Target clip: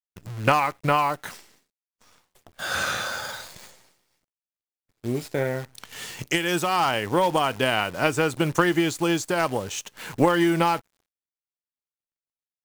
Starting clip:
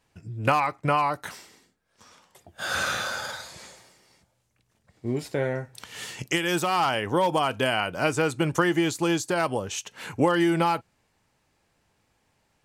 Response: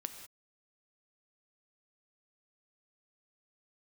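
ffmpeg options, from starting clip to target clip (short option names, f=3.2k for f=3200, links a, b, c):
-af "aeval=exprs='0.596*(cos(1*acos(clip(val(0)/0.596,-1,1)))-cos(1*PI/2))+0.0266*(cos(7*acos(clip(val(0)/0.596,-1,1)))-cos(7*PI/2))':c=same,acrusher=bits=8:dc=4:mix=0:aa=0.000001,agate=range=-33dB:threshold=-58dB:ratio=3:detection=peak,volume=3.5dB"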